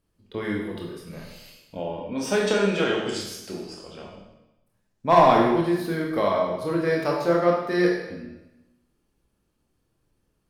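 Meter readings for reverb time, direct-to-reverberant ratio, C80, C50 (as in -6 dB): 0.95 s, -1.5 dB, 5.0 dB, 2.5 dB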